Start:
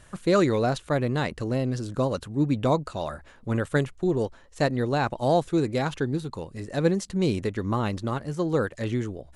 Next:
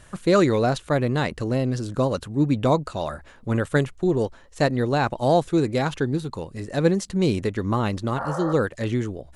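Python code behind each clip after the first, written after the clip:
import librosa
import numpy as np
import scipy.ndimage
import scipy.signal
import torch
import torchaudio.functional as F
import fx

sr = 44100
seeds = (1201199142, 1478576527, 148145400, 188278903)

y = fx.spec_repair(x, sr, seeds[0], start_s=8.2, length_s=0.31, low_hz=510.0, high_hz=1900.0, source='both')
y = y * librosa.db_to_amplitude(3.0)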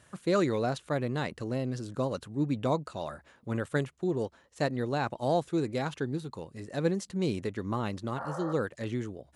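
y = scipy.signal.sosfilt(scipy.signal.butter(2, 92.0, 'highpass', fs=sr, output='sos'), x)
y = y * librosa.db_to_amplitude(-8.5)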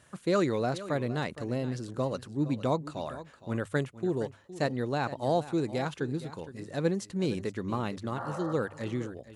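y = fx.hum_notches(x, sr, base_hz=50, count=2)
y = y + 10.0 ** (-15.0 / 20.0) * np.pad(y, (int(464 * sr / 1000.0), 0))[:len(y)]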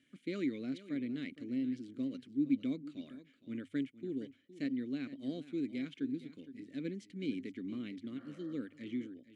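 y = fx.vowel_filter(x, sr, vowel='i')
y = fx.high_shelf(y, sr, hz=8100.0, db=10.0)
y = y * librosa.db_to_amplitude(3.0)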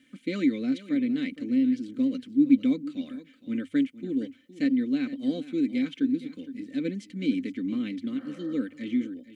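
y = x + 0.57 * np.pad(x, (int(3.9 * sr / 1000.0), 0))[:len(x)]
y = y * librosa.db_to_amplitude(8.5)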